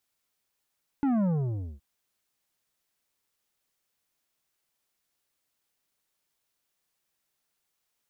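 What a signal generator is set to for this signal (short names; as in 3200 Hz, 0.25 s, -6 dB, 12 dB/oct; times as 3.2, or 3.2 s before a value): sub drop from 290 Hz, over 0.77 s, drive 9.5 dB, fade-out 0.56 s, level -23.5 dB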